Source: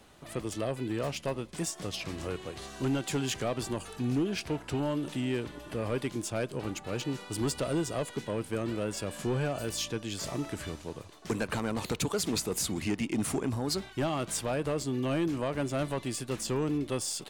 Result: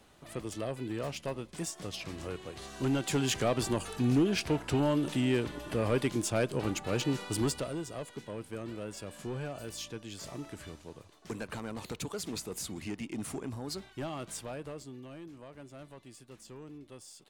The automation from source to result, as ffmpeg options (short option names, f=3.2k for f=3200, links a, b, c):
-af "volume=3dB,afade=t=in:st=2.48:d=1.02:silence=0.473151,afade=t=out:st=7.29:d=0.44:silence=0.298538,afade=t=out:st=14.29:d=0.81:silence=0.316228"